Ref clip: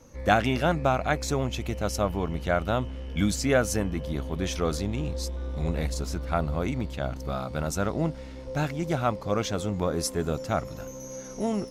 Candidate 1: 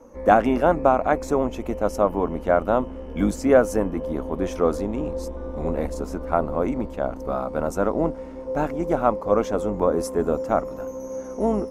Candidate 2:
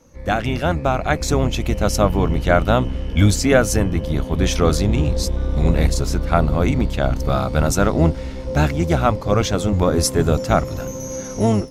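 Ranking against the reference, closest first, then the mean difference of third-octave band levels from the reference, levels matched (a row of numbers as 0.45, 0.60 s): 2, 1; 2.5, 6.5 dB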